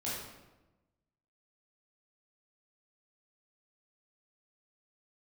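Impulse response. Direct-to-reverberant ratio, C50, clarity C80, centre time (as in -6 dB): -8.5 dB, 0.0 dB, 3.0 dB, 75 ms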